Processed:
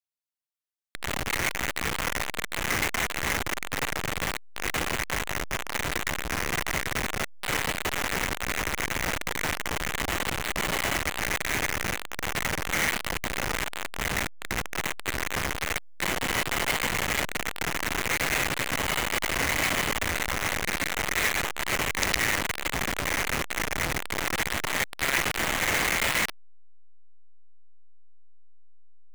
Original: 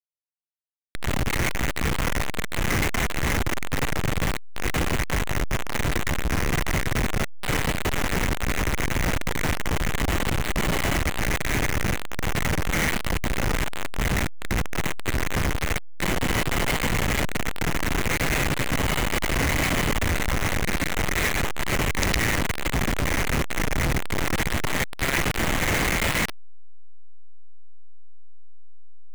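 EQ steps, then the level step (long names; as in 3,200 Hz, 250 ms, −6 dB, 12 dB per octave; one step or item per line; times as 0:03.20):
low-shelf EQ 370 Hz −11.5 dB
0.0 dB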